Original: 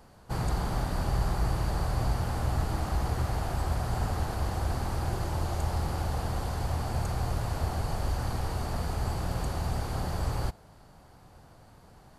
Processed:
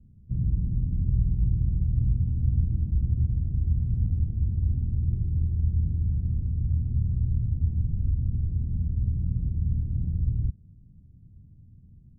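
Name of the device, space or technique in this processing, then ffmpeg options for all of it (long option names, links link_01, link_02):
the neighbour's flat through the wall: -af "lowpass=frequency=220:width=0.5412,lowpass=frequency=220:width=1.3066,equalizer=frequency=91:width_type=o:width=0.9:gain=4.5,volume=3dB"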